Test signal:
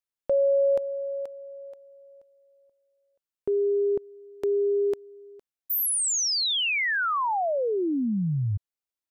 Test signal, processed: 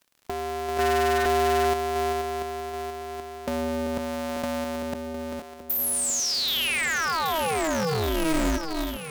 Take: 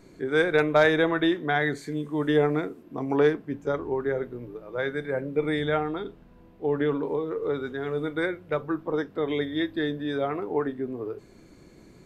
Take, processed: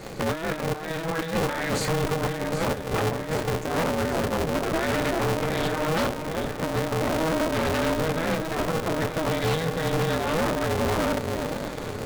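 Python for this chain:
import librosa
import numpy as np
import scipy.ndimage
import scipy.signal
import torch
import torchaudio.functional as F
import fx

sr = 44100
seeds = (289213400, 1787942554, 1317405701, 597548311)

p1 = scipy.signal.sosfilt(scipy.signal.butter(4, 160.0, 'highpass', fs=sr, output='sos'), x)
p2 = fx.over_compress(p1, sr, threshold_db=-34.0, ratio=-1.0)
p3 = p2 + fx.echo_alternate(p2, sr, ms=389, hz=1100.0, feedback_pct=83, wet_db=-9.0, dry=0)
p4 = 10.0 ** (-27.5 / 20.0) * (np.abs((p3 / 10.0 ** (-27.5 / 20.0) + 3.0) % 4.0 - 2.0) - 1.0)
p5 = fx.dmg_crackle(p4, sr, seeds[0], per_s=86.0, level_db=-52.0)
p6 = p5 * np.sign(np.sin(2.0 * np.pi * 160.0 * np.arange(len(p5)) / sr))
y = F.gain(torch.from_numpy(p6), 8.5).numpy()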